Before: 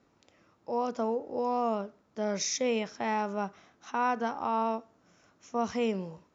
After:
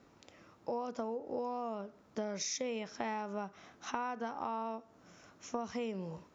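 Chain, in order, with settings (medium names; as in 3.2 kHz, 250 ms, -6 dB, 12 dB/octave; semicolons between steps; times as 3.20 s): compression 10:1, threshold -39 dBFS, peak gain reduction 15.5 dB; trim +4.5 dB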